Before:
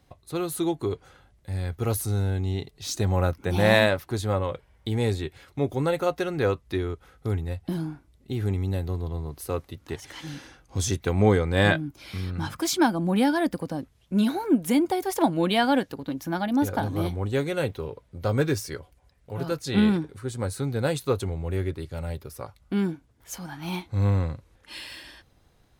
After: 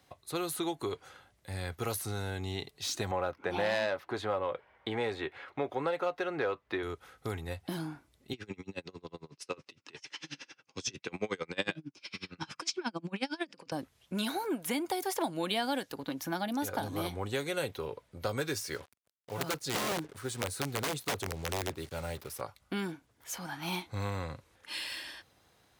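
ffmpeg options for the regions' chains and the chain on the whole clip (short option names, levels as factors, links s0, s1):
-filter_complex "[0:a]asettb=1/sr,asplit=3[s0][s1][s2];[s0]atrim=end=3.114[s3];[s1]atrim=start=3.11:end=6.83,asetpts=PTS-STARTPTS,afade=t=in:d=0.004:c=qsin,afade=t=out:st=3.716:d=0.004:c=qsin,bass=f=250:g=-2,treble=f=4000:g=-14,asplit=2[s4][s5];[s5]highpass=f=720:p=1,volume=5.01,asoftclip=type=tanh:threshold=0.562[s6];[s4][s6]amix=inputs=2:normalize=0,lowpass=f=1500:p=1,volume=0.501[s7];[s2]atrim=start=6.826[s8];[s3][s7]acrossfade=d=0.004:c1=hsin:c2=qsin[s9];[s9][s8]acrossfade=d=0.004:c1=qsin:c2=hsin,asettb=1/sr,asplit=3[s10][s11][s12];[s10]atrim=end=8.334[s13];[s11]atrim=start=8.33:end=13.72,asetpts=PTS-STARTPTS,afade=t=in:d=0.004:c=qsin,afade=t=out:st=5.386:d=0.004:c=qsin,highpass=f=130:w=0.5412,highpass=f=130:w=1.3066,equalizer=f=720:t=q:w=4:g=-7,equalizer=f=2600:t=q:w=4:g=9,equalizer=f=5300:t=q:w=4:g=8,lowpass=f=7400:w=0.5412,lowpass=f=7400:w=1.3066,aeval=exprs='val(0)*pow(10,-31*(0.5-0.5*cos(2*PI*11*n/s))/20)':c=same[s14];[s12]atrim=start=13.716[s15];[s13][s14]acrossfade=d=0.004:c1=hsin:c2=qsin[s16];[s16][s15]acrossfade=d=0.004:c1=qsin:c2=hsin,asettb=1/sr,asplit=3[s17][s18][s19];[s17]atrim=end=18.674[s20];[s18]atrim=start=18.67:end=22.41,asetpts=PTS-STARTPTS,afade=t=in:d=0.004:c=qsin,afade=t=out:st=3.736:d=0.004:c=qsin,acrusher=bits=7:mix=0:aa=0.5,aeval=exprs='(mod(10*val(0)+1,2)-1)/10':c=same[s21];[s19]atrim=start=22.406[s22];[s20][s21]acrossfade=d=0.004:c1=hsin:c2=qsin[s23];[s23][s22]acrossfade=d=0.004:c1=qsin:c2=hsin,highpass=72,lowshelf=f=380:g=-10.5,acrossover=split=630|3800[s24][s25][s26];[s24]acompressor=threshold=0.0158:ratio=4[s27];[s25]acompressor=threshold=0.0112:ratio=4[s28];[s26]acompressor=threshold=0.01:ratio=4[s29];[s27][s28][s29]amix=inputs=3:normalize=0,volume=1.26"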